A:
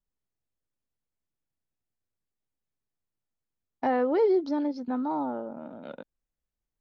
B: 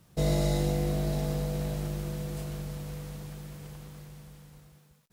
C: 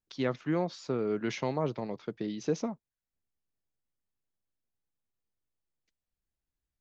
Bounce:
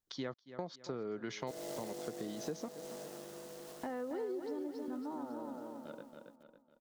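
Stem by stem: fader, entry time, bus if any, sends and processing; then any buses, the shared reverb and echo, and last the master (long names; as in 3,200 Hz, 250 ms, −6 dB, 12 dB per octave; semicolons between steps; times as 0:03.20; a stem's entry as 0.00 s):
−6.5 dB, 0.00 s, no send, echo send −5.5 dB, parametric band 790 Hz −5 dB 0.63 octaves; noise gate with hold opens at −31 dBFS
−6.5 dB, 1.30 s, no send, no echo send, high-pass filter 290 Hz 24 dB per octave; short delay modulated by noise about 5,800 Hz, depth 0.069 ms
+2.0 dB, 0.00 s, no send, echo send −20 dB, low-shelf EQ 470 Hz −4.5 dB; notch filter 2,700 Hz, Q 9.8; gate pattern "xxxx...xx.xxxx" 179 BPM −60 dB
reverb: not used
echo: repeating echo 276 ms, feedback 42%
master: parametric band 2,300 Hz −5.5 dB 0.22 octaves; downward compressor 3 to 1, threshold −40 dBFS, peak gain reduction 12 dB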